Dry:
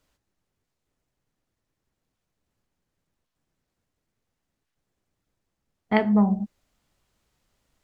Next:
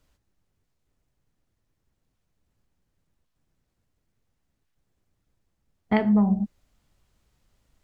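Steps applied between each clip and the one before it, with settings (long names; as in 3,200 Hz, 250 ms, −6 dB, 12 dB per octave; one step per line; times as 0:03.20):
low-shelf EQ 150 Hz +9 dB
downward compressor, threshold −16 dBFS, peak gain reduction 4.5 dB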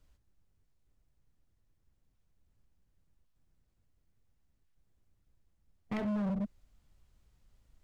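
low-shelf EQ 100 Hz +10 dB
brickwall limiter −16 dBFS, peak gain reduction 8 dB
hard clipping −25.5 dBFS, distortion −9 dB
level −5.5 dB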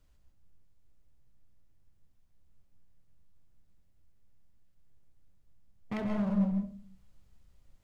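convolution reverb RT60 0.45 s, pre-delay 132 ms, DRR 4 dB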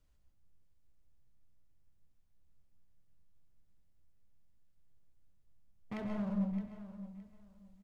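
repeating echo 617 ms, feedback 22%, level −13.5 dB
level −6 dB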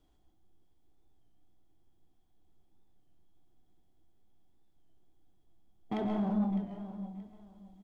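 hollow resonant body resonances 340/740/3,300 Hz, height 17 dB, ringing for 25 ms
soft clipping −23 dBFS, distortion −19 dB
wow of a warped record 33 1/3 rpm, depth 100 cents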